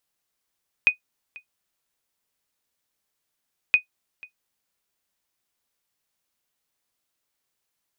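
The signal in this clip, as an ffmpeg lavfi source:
-f lavfi -i "aevalsrc='0.422*(sin(2*PI*2490*mod(t,2.87))*exp(-6.91*mod(t,2.87)/0.11)+0.0596*sin(2*PI*2490*max(mod(t,2.87)-0.49,0))*exp(-6.91*max(mod(t,2.87)-0.49,0)/0.11))':d=5.74:s=44100"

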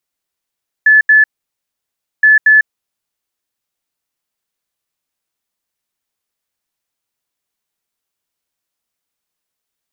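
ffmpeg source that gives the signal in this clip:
-f lavfi -i "aevalsrc='0.631*sin(2*PI*1730*t)*clip(min(mod(mod(t,1.37),0.23),0.15-mod(mod(t,1.37),0.23))/0.005,0,1)*lt(mod(t,1.37),0.46)':d=2.74:s=44100"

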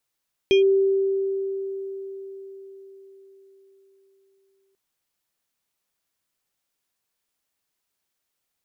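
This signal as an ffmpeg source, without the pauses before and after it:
-f lavfi -i "aevalsrc='0.237*pow(10,-3*t/4.77)*sin(2*PI*389*t+0.53*clip(1-t/0.12,0,1)*sin(2*PI*7.27*389*t))':d=4.24:s=44100"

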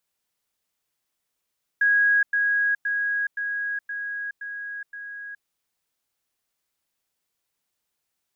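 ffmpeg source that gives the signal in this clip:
-f lavfi -i "aevalsrc='pow(10,(-16-3*floor(t/0.52))/20)*sin(2*PI*1650*t)*clip(min(mod(t,0.52),0.42-mod(t,0.52))/0.005,0,1)':d=3.64:s=44100"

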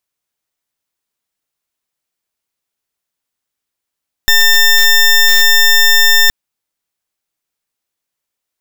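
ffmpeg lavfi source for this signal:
-f lavfi -i "aevalsrc='0.422*(2*lt(mod(1800*t,1),0.18)-1)':d=2.02:s=44100"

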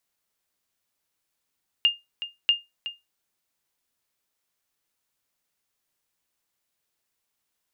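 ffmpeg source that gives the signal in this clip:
-f lavfi -i "aevalsrc='0.266*(sin(2*PI*2820*mod(t,0.64))*exp(-6.91*mod(t,0.64)/0.2)+0.224*sin(2*PI*2820*max(mod(t,0.64)-0.37,0))*exp(-6.91*max(mod(t,0.64)-0.37,0)/0.2))':d=1.28:s=44100"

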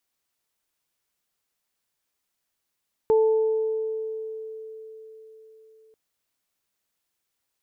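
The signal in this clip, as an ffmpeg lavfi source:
-f lavfi -i "aevalsrc='0.178*pow(10,-3*t/4.41)*sin(2*PI*440*t)+0.0422*pow(10,-3*t/1.63)*sin(2*PI*880*t)':d=2.84:s=44100"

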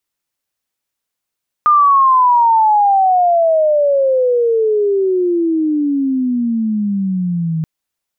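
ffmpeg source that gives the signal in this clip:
-f lavfi -i "aevalsrc='pow(10,(-6.5-8.5*t/5.98)/20)*sin(2*PI*1220*5.98/(-35.5*log(2)/12)*(exp(-35.5*log(2)/12*t/5.98)-1))':d=5.98:s=44100"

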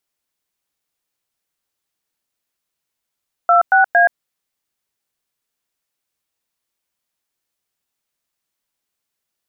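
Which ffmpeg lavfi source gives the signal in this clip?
-f lavfi -i "aevalsrc='0.282*clip(min(mod(t,0.229),0.125-mod(t,0.229))/0.002,0,1)*(eq(floor(t/0.229),0)*(sin(2*PI*697*mod(t,0.229))+sin(2*PI*1336*mod(t,0.229)))+eq(floor(t/0.229),1)*(sin(2*PI*770*mod(t,0.229))+sin(2*PI*1477*mod(t,0.229)))+eq(floor(t/0.229),2)*(sin(2*PI*697*mod(t,0.229))+sin(2*PI*1633*mod(t,0.229))))':d=0.687:s=44100"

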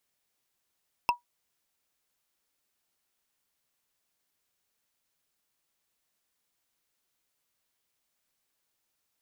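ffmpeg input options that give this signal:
-f lavfi -i "aevalsrc='0.15*pow(10,-3*t/0.13)*sin(2*PI*964*t)+0.0891*pow(10,-3*t/0.038)*sin(2*PI*2657.7*t)+0.0531*pow(10,-3*t/0.017)*sin(2*PI*5209.5*t)+0.0316*pow(10,-3*t/0.009)*sin(2*PI*8611.4*t)+0.0188*pow(10,-3*t/0.006)*sin(2*PI*12859.8*t)':d=0.45:s=44100"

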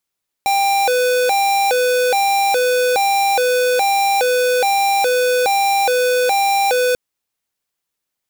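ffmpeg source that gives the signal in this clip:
-f lavfi -i "aevalsrc='0.168*(2*lt(mod((646*t+147/1.2*(0.5-abs(mod(1.2*t,1)-0.5))),1),0.5)-1)':d=6.49:s=44100"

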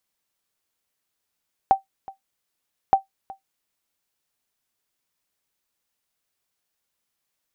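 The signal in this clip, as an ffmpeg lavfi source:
-f lavfi -i "aevalsrc='0.473*(sin(2*PI*777*mod(t,1.22))*exp(-6.91*mod(t,1.22)/0.13)+0.0841*sin(2*PI*777*max(mod(t,1.22)-0.37,0))*exp(-6.91*max(mod(t,1.22)-0.37,0)/0.13))':d=2.44:s=44100"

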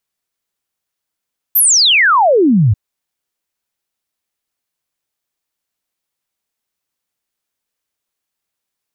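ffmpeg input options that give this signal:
-f lavfi -i "aevalsrc='0.447*clip(min(t,1.19-t)/0.01,0,1)*sin(2*PI*14000*1.19/log(94/14000)*(exp(log(94/14000)*t/1.19)-1))':d=1.19:s=44100"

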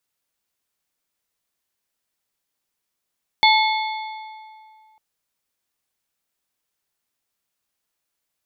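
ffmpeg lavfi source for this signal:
-f lavfi -i "aevalsrc='0.224*pow(10,-3*t/2.27)*sin(2*PI*871*t)+0.178*pow(10,-3*t/1.724)*sin(2*PI*2177.5*t)+0.141*pow(10,-3*t/1.498)*sin(2*PI*3484*t)+0.112*pow(10,-3*t/1.401)*sin(2*PI*4355*t)':d=1.55:s=44100"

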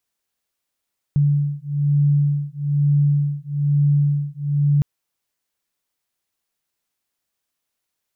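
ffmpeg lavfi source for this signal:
-f lavfi -i "aevalsrc='0.119*(sin(2*PI*144*t)+sin(2*PI*145.1*t))':d=3.66:s=44100"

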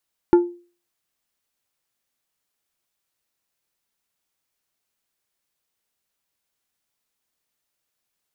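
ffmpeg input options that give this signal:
-f lavfi -i "aevalsrc='0.473*pow(10,-3*t/0.38)*sin(2*PI*349*t)+0.133*pow(10,-3*t/0.2)*sin(2*PI*872.5*t)+0.0376*pow(10,-3*t/0.144)*sin(2*PI*1396*t)+0.0106*pow(10,-3*t/0.123)*sin(2*PI*1745*t)+0.00299*pow(10,-3*t/0.103)*sin(2*PI*2268.5*t)':d=0.89:s=44100"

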